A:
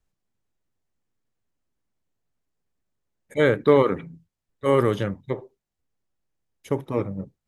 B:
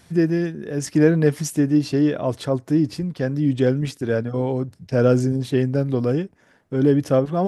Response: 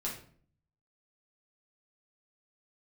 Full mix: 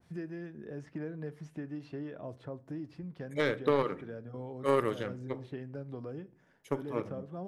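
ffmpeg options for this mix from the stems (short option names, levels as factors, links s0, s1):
-filter_complex "[0:a]lowshelf=f=180:g=-9.5,alimiter=limit=0.266:level=0:latency=1:release=277,aeval=exprs='0.266*(cos(1*acos(clip(val(0)/0.266,-1,1)))-cos(1*PI/2))+0.0422*(cos(3*acos(clip(val(0)/0.266,-1,1)))-cos(3*PI/2))':c=same,volume=0.531,asplit=3[s0][s1][s2];[s1]volume=0.168[s3];[1:a]highshelf=f=4500:g=-8,acrossover=split=660|3300[s4][s5][s6];[s4]acompressor=threshold=0.0355:ratio=4[s7];[s5]acompressor=threshold=0.0126:ratio=4[s8];[s6]acompressor=threshold=0.00126:ratio=4[s9];[s7][s8][s9]amix=inputs=3:normalize=0,adynamicequalizer=threshold=0.00398:dfrequency=1700:dqfactor=0.7:tfrequency=1700:tqfactor=0.7:attack=5:release=100:ratio=0.375:range=3.5:mode=cutabove:tftype=highshelf,volume=0.237,asplit=2[s10][s11];[s11]volume=0.141[s12];[s2]apad=whole_len=329784[s13];[s10][s13]sidechaincompress=threshold=0.0447:ratio=8:attack=16:release=945[s14];[2:a]atrim=start_sample=2205[s15];[s3][s12]amix=inputs=2:normalize=0[s16];[s16][s15]afir=irnorm=-1:irlink=0[s17];[s0][s14][s17]amix=inputs=3:normalize=0"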